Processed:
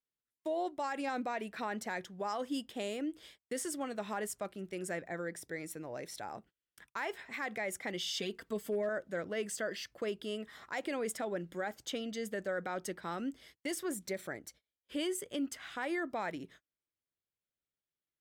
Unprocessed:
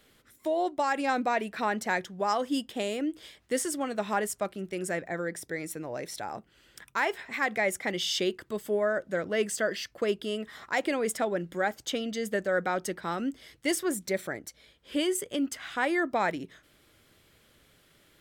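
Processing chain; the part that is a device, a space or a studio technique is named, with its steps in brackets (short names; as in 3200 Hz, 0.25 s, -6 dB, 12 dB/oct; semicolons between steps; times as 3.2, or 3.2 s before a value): gate -50 dBFS, range -32 dB; 8.14–8.89 comb 4.4 ms, depth 96%; clipper into limiter (hard clip -16.5 dBFS, distortion -39 dB; limiter -21 dBFS, peak gain reduction 4.5 dB); gain -6.5 dB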